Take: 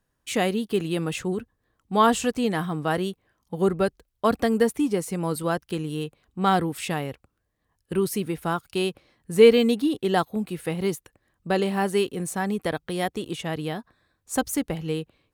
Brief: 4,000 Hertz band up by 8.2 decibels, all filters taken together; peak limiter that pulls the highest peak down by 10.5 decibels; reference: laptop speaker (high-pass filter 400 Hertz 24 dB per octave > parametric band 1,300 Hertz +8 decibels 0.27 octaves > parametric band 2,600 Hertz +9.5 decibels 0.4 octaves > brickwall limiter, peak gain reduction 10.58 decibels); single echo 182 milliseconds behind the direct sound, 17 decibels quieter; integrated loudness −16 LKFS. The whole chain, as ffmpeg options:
ffmpeg -i in.wav -af "equalizer=frequency=4000:width_type=o:gain=6.5,alimiter=limit=-13.5dB:level=0:latency=1,highpass=frequency=400:width=0.5412,highpass=frequency=400:width=1.3066,equalizer=frequency=1300:width_type=o:width=0.27:gain=8,equalizer=frequency=2600:width_type=o:width=0.4:gain=9.5,aecho=1:1:182:0.141,volume=14.5dB,alimiter=limit=-3.5dB:level=0:latency=1" out.wav

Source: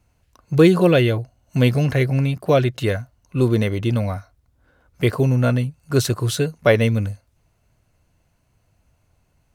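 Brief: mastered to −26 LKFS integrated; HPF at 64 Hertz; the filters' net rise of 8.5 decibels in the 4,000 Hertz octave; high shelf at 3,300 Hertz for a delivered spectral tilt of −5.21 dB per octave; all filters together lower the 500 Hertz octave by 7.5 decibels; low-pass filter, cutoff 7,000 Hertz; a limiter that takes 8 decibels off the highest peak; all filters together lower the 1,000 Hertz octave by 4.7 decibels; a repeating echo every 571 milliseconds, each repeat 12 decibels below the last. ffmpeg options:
ffmpeg -i in.wav -af "highpass=64,lowpass=7000,equalizer=frequency=500:width_type=o:gain=-9,equalizer=frequency=1000:width_type=o:gain=-4.5,highshelf=frequency=3300:gain=4,equalizer=frequency=4000:width_type=o:gain=8.5,alimiter=limit=-10.5dB:level=0:latency=1,aecho=1:1:571|1142|1713:0.251|0.0628|0.0157,volume=-3.5dB" out.wav

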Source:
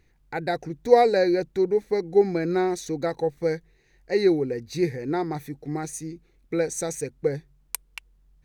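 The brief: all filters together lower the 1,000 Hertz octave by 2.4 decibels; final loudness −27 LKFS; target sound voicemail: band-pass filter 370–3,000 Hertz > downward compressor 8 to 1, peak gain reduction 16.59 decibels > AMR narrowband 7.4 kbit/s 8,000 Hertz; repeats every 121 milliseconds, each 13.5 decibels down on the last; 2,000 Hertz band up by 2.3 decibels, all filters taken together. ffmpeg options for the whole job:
ffmpeg -i in.wav -af "highpass=370,lowpass=3000,equalizer=frequency=1000:width_type=o:gain=-4.5,equalizer=frequency=2000:width_type=o:gain=5,aecho=1:1:121|242:0.211|0.0444,acompressor=threshold=-28dB:ratio=8,volume=8.5dB" -ar 8000 -c:a libopencore_amrnb -b:a 7400 out.amr

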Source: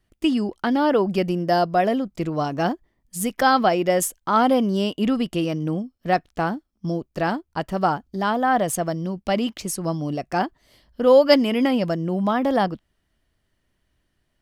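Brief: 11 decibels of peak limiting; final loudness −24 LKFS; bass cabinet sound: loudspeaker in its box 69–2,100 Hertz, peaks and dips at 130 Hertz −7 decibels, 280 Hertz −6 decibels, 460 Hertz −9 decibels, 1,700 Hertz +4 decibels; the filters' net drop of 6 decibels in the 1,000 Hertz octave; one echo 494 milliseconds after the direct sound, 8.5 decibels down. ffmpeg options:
ffmpeg -i in.wav -af "equalizer=frequency=1000:width_type=o:gain=-8.5,alimiter=limit=-16.5dB:level=0:latency=1,highpass=frequency=69:width=0.5412,highpass=frequency=69:width=1.3066,equalizer=frequency=130:width_type=q:width=4:gain=-7,equalizer=frequency=280:width_type=q:width=4:gain=-6,equalizer=frequency=460:width_type=q:width=4:gain=-9,equalizer=frequency=1700:width_type=q:width=4:gain=4,lowpass=frequency=2100:width=0.5412,lowpass=frequency=2100:width=1.3066,aecho=1:1:494:0.376,volume=5dB" out.wav

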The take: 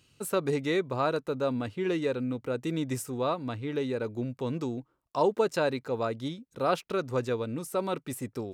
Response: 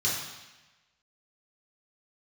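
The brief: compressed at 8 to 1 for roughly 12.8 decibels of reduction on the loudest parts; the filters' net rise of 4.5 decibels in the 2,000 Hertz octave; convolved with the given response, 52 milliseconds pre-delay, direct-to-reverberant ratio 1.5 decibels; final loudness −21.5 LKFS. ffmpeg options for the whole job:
-filter_complex "[0:a]equalizer=frequency=2000:width_type=o:gain=6,acompressor=threshold=-33dB:ratio=8,asplit=2[link_01][link_02];[1:a]atrim=start_sample=2205,adelay=52[link_03];[link_02][link_03]afir=irnorm=-1:irlink=0,volume=-11dB[link_04];[link_01][link_04]amix=inputs=2:normalize=0,volume=14dB"

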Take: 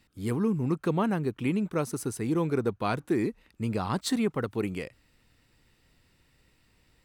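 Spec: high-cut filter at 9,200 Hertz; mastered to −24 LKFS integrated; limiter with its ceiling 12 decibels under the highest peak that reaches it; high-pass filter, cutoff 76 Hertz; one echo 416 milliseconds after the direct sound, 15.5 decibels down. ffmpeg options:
ffmpeg -i in.wav -af "highpass=76,lowpass=9200,alimiter=level_in=1dB:limit=-24dB:level=0:latency=1,volume=-1dB,aecho=1:1:416:0.168,volume=11dB" out.wav

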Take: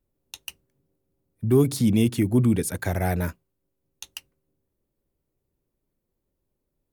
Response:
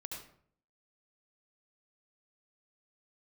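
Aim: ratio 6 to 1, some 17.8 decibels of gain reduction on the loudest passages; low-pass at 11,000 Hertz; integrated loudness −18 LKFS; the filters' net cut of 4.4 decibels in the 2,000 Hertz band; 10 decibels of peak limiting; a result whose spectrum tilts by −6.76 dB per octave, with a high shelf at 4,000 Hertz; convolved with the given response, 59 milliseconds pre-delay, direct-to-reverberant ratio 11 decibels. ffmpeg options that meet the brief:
-filter_complex "[0:a]lowpass=11000,equalizer=frequency=2000:width_type=o:gain=-4,highshelf=frequency=4000:gain=-8.5,acompressor=threshold=-35dB:ratio=6,alimiter=level_in=8dB:limit=-24dB:level=0:latency=1,volume=-8dB,asplit=2[link_01][link_02];[1:a]atrim=start_sample=2205,adelay=59[link_03];[link_02][link_03]afir=irnorm=-1:irlink=0,volume=-9dB[link_04];[link_01][link_04]amix=inputs=2:normalize=0,volume=25.5dB"

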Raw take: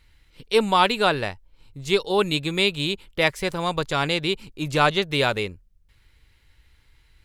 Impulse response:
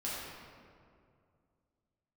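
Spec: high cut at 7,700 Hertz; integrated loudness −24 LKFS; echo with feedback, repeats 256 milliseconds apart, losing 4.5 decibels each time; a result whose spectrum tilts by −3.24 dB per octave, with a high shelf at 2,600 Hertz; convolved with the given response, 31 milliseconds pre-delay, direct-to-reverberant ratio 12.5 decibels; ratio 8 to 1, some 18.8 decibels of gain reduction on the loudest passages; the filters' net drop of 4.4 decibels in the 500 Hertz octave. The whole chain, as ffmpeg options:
-filter_complex "[0:a]lowpass=7700,equalizer=frequency=500:width_type=o:gain=-5.5,highshelf=frequency=2600:gain=-3,acompressor=threshold=-36dB:ratio=8,aecho=1:1:256|512|768|1024|1280|1536|1792|2048|2304:0.596|0.357|0.214|0.129|0.0772|0.0463|0.0278|0.0167|0.01,asplit=2[link_01][link_02];[1:a]atrim=start_sample=2205,adelay=31[link_03];[link_02][link_03]afir=irnorm=-1:irlink=0,volume=-16dB[link_04];[link_01][link_04]amix=inputs=2:normalize=0,volume=14.5dB"

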